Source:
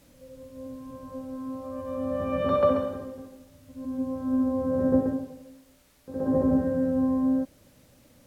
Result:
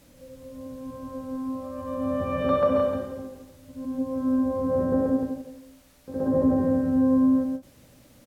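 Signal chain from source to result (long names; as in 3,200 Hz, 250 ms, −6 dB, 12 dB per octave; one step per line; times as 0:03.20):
in parallel at +2 dB: brickwall limiter −20 dBFS, peak gain reduction 9 dB
on the sum: single-tap delay 169 ms −5.5 dB
every ending faded ahead of time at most 300 dB per second
level −5 dB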